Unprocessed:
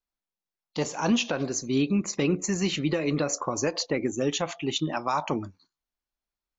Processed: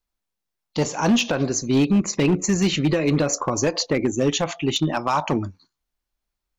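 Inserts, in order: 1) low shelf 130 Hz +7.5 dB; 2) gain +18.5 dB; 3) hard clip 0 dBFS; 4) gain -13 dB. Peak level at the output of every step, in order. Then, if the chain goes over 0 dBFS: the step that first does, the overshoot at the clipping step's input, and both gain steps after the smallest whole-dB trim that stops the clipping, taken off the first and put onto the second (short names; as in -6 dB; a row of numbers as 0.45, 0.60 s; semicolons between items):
-12.5, +6.0, 0.0, -13.0 dBFS; step 2, 6.0 dB; step 2 +12.5 dB, step 4 -7 dB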